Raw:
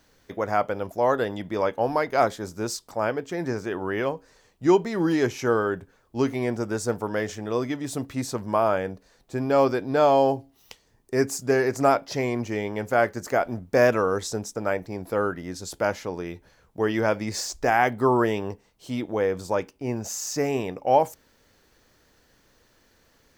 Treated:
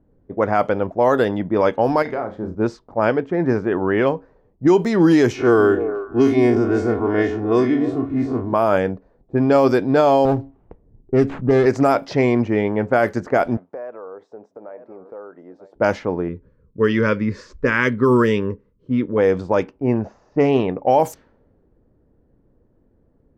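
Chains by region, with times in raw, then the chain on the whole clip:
2.02–2.55 s: compression, threshold -30 dBFS + flutter echo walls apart 5.7 m, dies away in 0.3 s
5.35–8.53 s: spectral blur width 83 ms + comb 2.8 ms, depth 73% + repeats whose band climbs or falls 149 ms, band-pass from 210 Hz, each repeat 1.4 oct, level -5.5 dB
10.25–11.66 s: tilt EQ -2 dB/octave + compression 1.5:1, threshold -28 dBFS + sliding maximum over 9 samples
13.57–15.76 s: high-pass 570 Hz + delay 935 ms -20.5 dB + compression 3:1, threshold -38 dBFS
16.28–19.18 s: Butterworth band-stop 740 Hz, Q 1.4 + peaking EQ 330 Hz -8 dB 0.21 oct
19.93–20.69 s: boxcar filter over 5 samples + loudspeaker Doppler distortion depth 0.1 ms
whole clip: level-controlled noise filter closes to 370 Hz, open at -18 dBFS; dynamic bell 240 Hz, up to +4 dB, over -37 dBFS, Q 0.74; loudness maximiser +12 dB; trim -5 dB

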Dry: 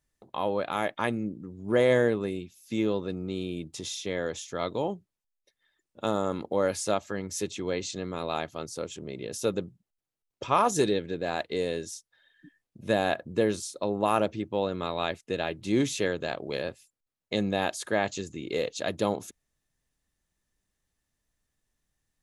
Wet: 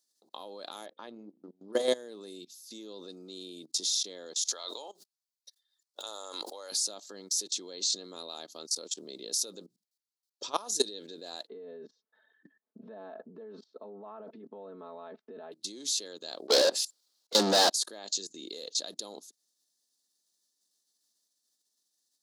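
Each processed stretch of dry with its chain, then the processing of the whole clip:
0.86–1.73 s: de-hum 65.31 Hz, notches 8 + transient shaper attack +6 dB, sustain -11 dB + distance through air 270 m
4.48–6.72 s: gate -56 dBFS, range -35 dB + high-pass 730 Hz + swell ahead of each attack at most 23 dB/s
11.47–15.52 s: low-pass 1.7 kHz 24 dB/octave + comb 4.6 ms, depth 95% + compressor with a negative ratio -32 dBFS
16.48–17.70 s: dynamic bell 3.4 kHz, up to -4 dB, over -46 dBFS, Q 0.87 + overdrive pedal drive 38 dB, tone 2.2 kHz, clips at -12.5 dBFS + three bands expanded up and down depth 70%
whole clip: level held to a coarse grid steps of 21 dB; high-pass 240 Hz 24 dB/octave; resonant high shelf 3.2 kHz +11.5 dB, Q 3; trim -2 dB

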